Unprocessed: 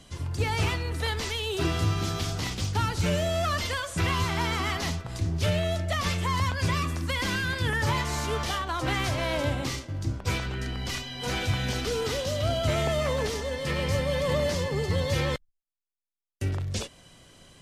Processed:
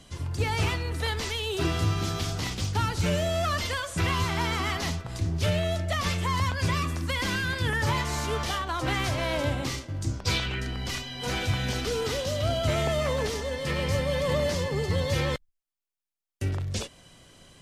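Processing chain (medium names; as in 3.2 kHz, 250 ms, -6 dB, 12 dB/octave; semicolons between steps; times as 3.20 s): 10.01–10.59 s: peaking EQ 8.8 kHz -> 2.2 kHz +10 dB 0.91 oct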